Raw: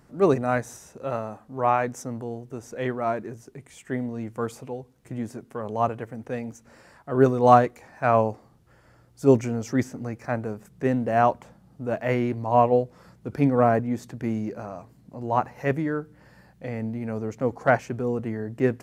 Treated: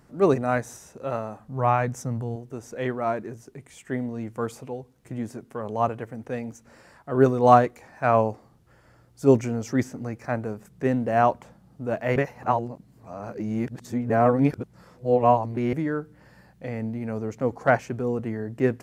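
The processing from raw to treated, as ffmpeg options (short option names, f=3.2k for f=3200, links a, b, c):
-filter_complex "[0:a]asettb=1/sr,asplit=3[a][b][c];[a]atrim=end=1.394[d];[b]atrim=start=1.39:end=2.36,asetpts=PTS-STARTPTS,afade=t=in:d=0.004:c=qsin,afade=t=out:st=0.966:d=0.004:c=qsin,lowshelf=f=210:t=q:w=1.5:g=7[e];[c]atrim=start=2.356[f];[d][e]acrossfade=d=0.004:c1=hsin:c2=qsin[g];[g][f]acrossfade=d=0.004:c1=qsin:c2=hsin,asplit=3[h][i][j];[h]atrim=end=12.162[k];[i]atrim=start=12.158:end=15.732,asetpts=PTS-STARTPTS,areverse[l];[j]atrim=start=15.728[m];[k][l]acrossfade=d=0.004:c1=hsin:c2=hsin[n];[n][m]acrossfade=d=0.004:c1=hsin:c2=hsin"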